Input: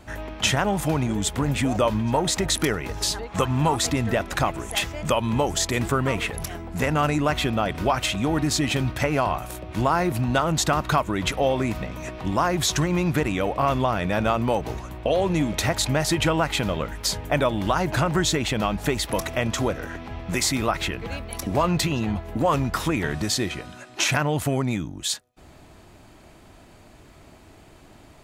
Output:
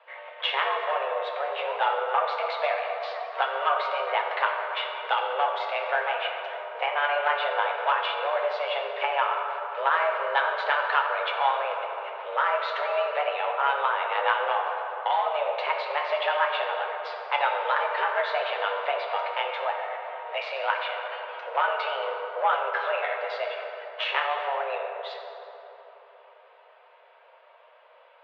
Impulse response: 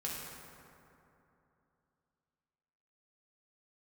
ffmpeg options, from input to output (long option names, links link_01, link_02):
-filter_complex "[0:a]aeval=exprs='0.398*(cos(1*acos(clip(val(0)/0.398,-1,1)))-cos(1*PI/2))+0.0708*(cos(3*acos(clip(val(0)/0.398,-1,1)))-cos(3*PI/2))':channel_layout=same,asplit=2[link_01][link_02];[1:a]atrim=start_sample=2205,asetrate=36162,aresample=44100,adelay=9[link_03];[link_02][link_03]afir=irnorm=-1:irlink=0,volume=-3dB[link_04];[link_01][link_04]amix=inputs=2:normalize=0,highpass=frequency=240:width_type=q:width=0.5412,highpass=frequency=240:width_type=q:width=1.307,lowpass=frequency=3100:width_type=q:width=0.5176,lowpass=frequency=3100:width_type=q:width=0.7071,lowpass=frequency=3100:width_type=q:width=1.932,afreqshift=280"